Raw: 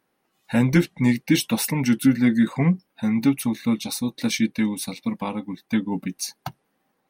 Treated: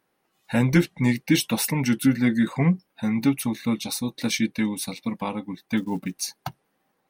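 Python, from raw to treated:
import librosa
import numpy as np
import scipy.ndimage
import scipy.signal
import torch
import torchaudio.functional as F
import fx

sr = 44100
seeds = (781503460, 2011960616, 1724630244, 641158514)

y = fx.quant_float(x, sr, bits=4, at=(5.77, 6.39))
y = fx.peak_eq(y, sr, hz=240.0, db=-3.0, octaves=0.55)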